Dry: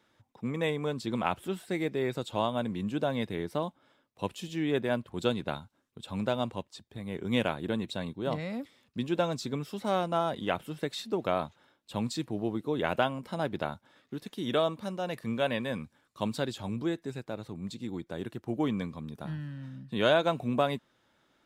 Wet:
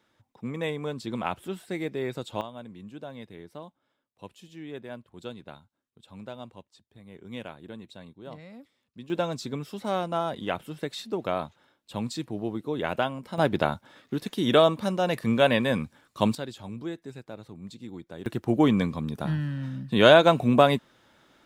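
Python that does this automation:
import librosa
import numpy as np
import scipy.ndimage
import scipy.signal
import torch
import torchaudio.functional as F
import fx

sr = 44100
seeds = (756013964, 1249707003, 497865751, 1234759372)

y = fx.gain(x, sr, db=fx.steps((0.0, -0.5), (2.41, -10.5), (9.1, 0.5), (13.38, 8.5), (16.35, -3.5), (18.26, 9.0)))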